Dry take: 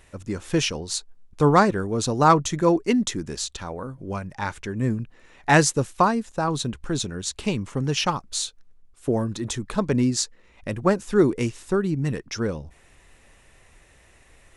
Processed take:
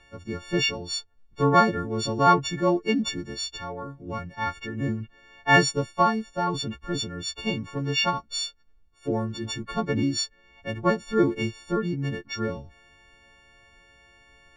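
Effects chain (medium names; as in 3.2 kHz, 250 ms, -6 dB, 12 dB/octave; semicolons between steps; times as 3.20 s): partials quantised in pitch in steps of 4 st; distance through air 190 m; trim -3 dB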